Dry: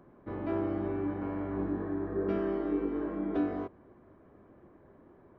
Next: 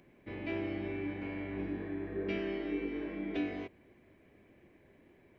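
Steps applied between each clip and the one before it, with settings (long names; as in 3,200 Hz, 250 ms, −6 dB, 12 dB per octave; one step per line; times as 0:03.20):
high shelf with overshoot 1,700 Hz +10.5 dB, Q 3
level −4.5 dB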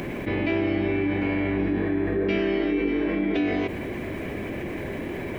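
envelope flattener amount 70%
level +9 dB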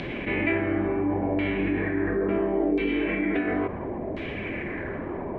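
flanger 1.6 Hz, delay 1.1 ms, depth 4.1 ms, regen −63%
auto-filter low-pass saw down 0.72 Hz 660–3,800 Hz
level +2.5 dB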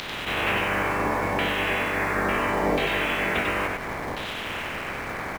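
ceiling on every frequency bin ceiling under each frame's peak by 29 dB
in parallel at −11 dB: bit reduction 5 bits
on the sum: single-tap delay 95 ms −4 dB
level −2.5 dB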